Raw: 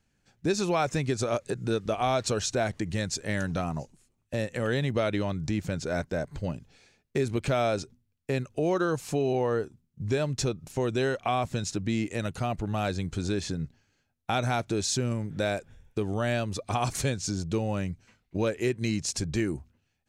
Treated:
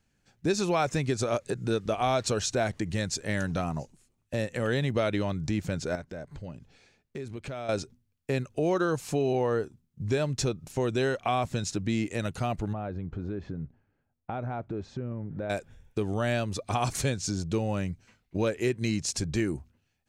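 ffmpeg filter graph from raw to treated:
ffmpeg -i in.wav -filter_complex "[0:a]asettb=1/sr,asplit=3[link_01][link_02][link_03];[link_01]atrim=end=5.954[link_04];[link_02]atrim=start=5.95:end=7.69,asetpts=PTS-STARTPTS,afade=type=in:duration=0.004:curve=qsin,afade=type=out:start_time=1.736:duration=0.004:curve=qsin,highshelf=frequency=5600:gain=-6,acompressor=threshold=-42dB:ratio=2:attack=3.2:release=140:knee=1:detection=peak[link_05];[link_03]atrim=start=7.686[link_06];[link_04][link_05]acrossfade=duration=0.004:curve1=hsin:curve2=qsin[link_07];[link_07][link_06]acrossfade=duration=0.004:curve1=qsin:curve2=hsin,asettb=1/sr,asplit=3[link_08][link_09][link_10];[link_08]atrim=end=12.734[link_11];[link_09]atrim=start=12.73:end=15.5,asetpts=PTS-STARTPTS,afade=type=in:duration=0.004:curve=qsin,afade=type=out:start_time=2.766:duration=0.004:curve=qsin,lowpass=1200,acompressor=threshold=-32dB:ratio=2.5:attack=3.2:release=140:knee=1:detection=peak[link_12];[link_10]atrim=start=15.496[link_13];[link_11][link_12]acrossfade=duration=0.004:curve1=hsin:curve2=qsin[link_14];[link_14][link_13]acrossfade=duration=0.004:curve1=qsin:curve2=hsin" out.wav

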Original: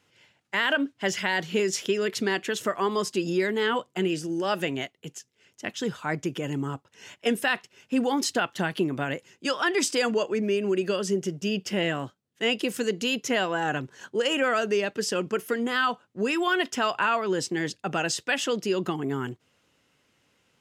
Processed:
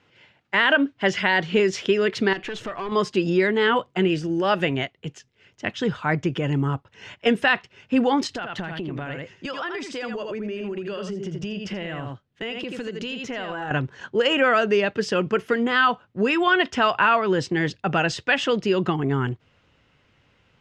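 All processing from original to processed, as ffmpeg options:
ffmpeg -i in.wav -filter_complex "[0:a]asettb=1/sr,asplit=3[link_01][link_02][link_03];[link_01]atrim=end=2.334[link_04];[link_02]atrim=start=2.33:end=2.92,asetpts=PTS-STARTPTS,afade=type=in:duration=0.004:curve=qsin,afade=type=out:start_time=0.586:duration=0.004:curve=qsin,acompressor=threshold=-27dB:ratio=10:attack=3.2:release=140:knee=1:detection=peak,aeval=exprs='(tanh(35.5*val(0)+0.15)-tanh(0.15))/35.5':channel_layout=same[link_05];[link_03]atrim=start=2.916[link_06];[link_04][link_05]acrossfade=duration=0.004:curve1=hsin:curve2=qsin[link_07];[link_07][link_06]acrossfade=duration=0.004:curve1=qsin:curve2=hsin,asettb=1/sr,asplit=3[link_08][link_09][link_10];[link_08]atrim=end=8.274[link_11];[link_09]atrim=start=8.27:end=13.71,asetpts=PTS-STARTPTS,afade=type=in:duration=0.004:curve=qsin,afade=type=out:start_time=5.436:duration=0.004:curve=qsin,aecho=1:1:81:0.398,atrim=end_sample=239904,acompressor=threshold=-32dB:ratio=8:attack=3.2:release=140:knee=1:detection=peak[link_12];[link_10]atrim=start=13.706[link_13];[link_11][link_12]acrossfade=duration=0.004:curve1=hsin:curve2=qsin[link_14];[link_14][link_13]acrossfade=duration=0.004:curve1=qsin:curve2=hsin,lowpass=3400,asubboost=boost=3:cutoff=130,volume=6.5dB" out.wav

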